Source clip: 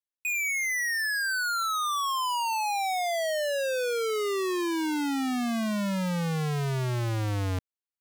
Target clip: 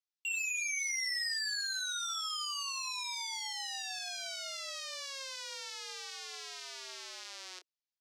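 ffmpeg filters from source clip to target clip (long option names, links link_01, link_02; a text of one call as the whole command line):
ffmpeg -i in.wav -filter_complex "[0:a]asoftclip=type=hard:threshold=-33dB,adynamicsmooth=sensitivity=7:basefreq=4900,bandpass=frequency=5000:width_type=q:width=1.7:csg=0,afreqshift=270,asplit=2[link_01][link_02];[link_02]adelay=28,volume=-8.5dB[link_03];[link_01][link_03]amix=inputs=2:normalize=0,volume=8dB" out.wav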